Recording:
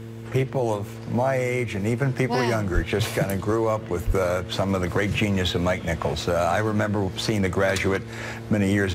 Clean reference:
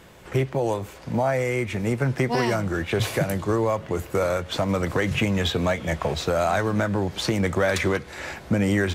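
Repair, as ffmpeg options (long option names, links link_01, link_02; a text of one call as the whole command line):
ffmpeg -i in.wav -filter_complex "[0:a]bandreject=frequency=113.4:width_type=h:width=4,bandreject=frequency=226.8:width_type=h:width=4,bandreject=frequency=340.2:width_type=h:width=4,bandreject=frequency=453.6:width_type=h:width=4,asplit=3[link_01][link_02][link_03];[link_01]afade=type=out:start_time=2.74:duration=0.02[link_04];[link_02]highpass=frequency=140:width=0.5412,highpass=frequency=140:width=1.3066,afade=type=in:start_time=2.74:duration=0.02,afade=type=out:start_time=2.86:duration=0.02[link_05];[link_03]afade=type=in:start_time=2.86:duration=0.02[link_06];[link_04][link_05][link_06]amix=inputs=3:normalize=0,asplit=3[link_07][link_08][link_09];[link_07]afade=type=out:start_time=4.06:duration=0.02[link_10];[link_08]highpass=frequency=140:width=0.5412,highpass=frequency=140:width=1.3066,afade=type=in:start_time=4.06:duration=0.02,afade=type=out:start_time=4.18:duration=0.02[link_11];[link_09]afade=type=in:start_time=4.18:duration=0.02[link_12];[link_10][link_11][link_12]amix=inputs=3:normalize=0" out.wav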